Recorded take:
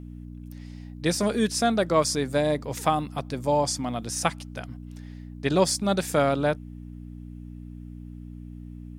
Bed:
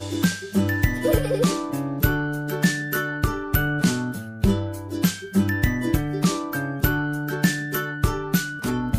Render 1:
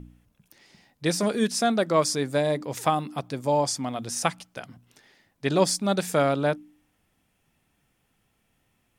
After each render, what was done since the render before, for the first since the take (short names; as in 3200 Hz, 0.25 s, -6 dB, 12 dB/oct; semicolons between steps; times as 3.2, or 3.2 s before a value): de-hum 60 Hz, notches 5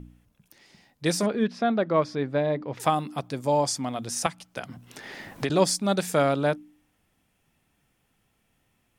1.26–2.8 air absorption 320 m; 4.26–5.5 three-band squash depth 100%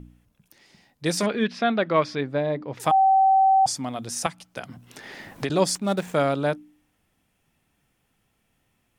1.17–2.21 bell 2600 Hz +9 dB 2 oct; 2.91–3.66 bleep 770 Hz -14 dBFS; 5.75–6.15 median filter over 9 samples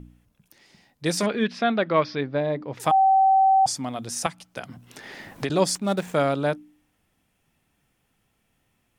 1.85–2.41 steep low-pass 5700 Hz 48 dB/oct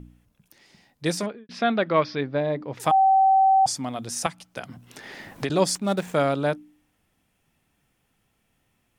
1.06–1.49 studio fade out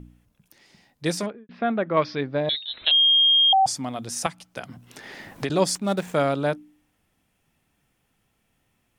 1.3–1.97 air absorption 500 m; 2.49–3.53 inverted band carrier 4000 Hz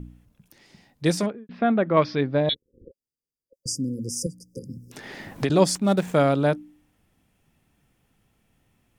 2.54–4.92 spectral delete 550–4700 Hz; low shelf 450 Hz +6 dB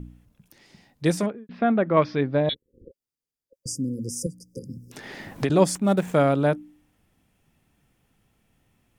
dynamic EQ 4600 Hz, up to -7 dB, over -45 dBFS, Q 1.5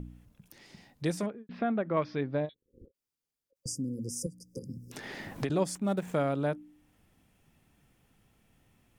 compressor 1.5:1, threshold -43 dBFS, peak gain reduction 11 dB; ending taper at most 410 dB/s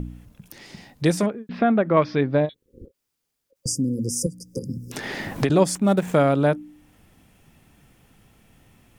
gain +11 dB